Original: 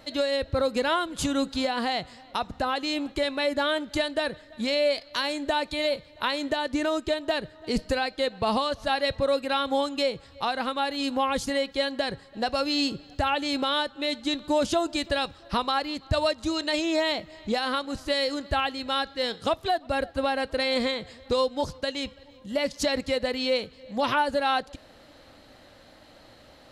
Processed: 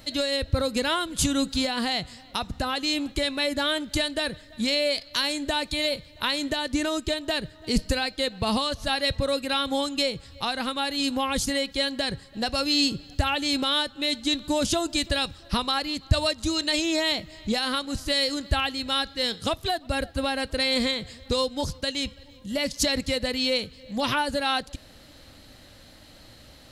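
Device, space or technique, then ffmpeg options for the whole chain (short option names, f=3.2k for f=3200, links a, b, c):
smiley-face EQ: -af "lowshelf=f=190:g=4,equalizer=f=710:t=o:w=2.8:g=-8,highshelf=f=6.8k:g=7,volume=4.5dB"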